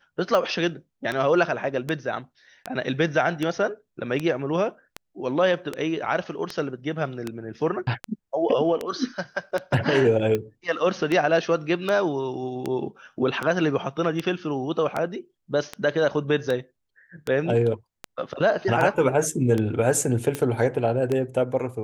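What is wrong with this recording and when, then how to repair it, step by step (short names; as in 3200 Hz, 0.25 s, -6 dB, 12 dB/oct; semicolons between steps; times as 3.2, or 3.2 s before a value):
tick 78 rpm -13 dBFS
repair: de-click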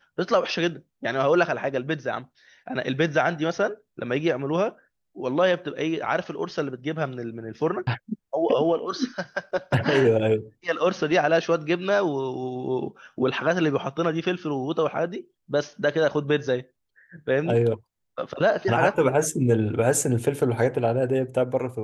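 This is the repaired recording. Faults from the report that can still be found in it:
none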